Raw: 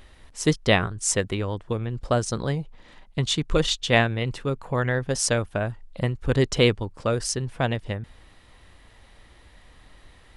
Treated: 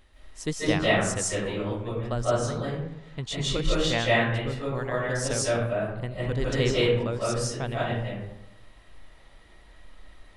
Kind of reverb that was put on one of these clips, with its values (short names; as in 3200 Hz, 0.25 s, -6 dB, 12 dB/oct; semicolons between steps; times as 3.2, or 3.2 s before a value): digital reverb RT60 0.87 s, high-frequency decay 0.5×, pre-delay 0.12 s, DRR -7 dB; gain -9.5 dB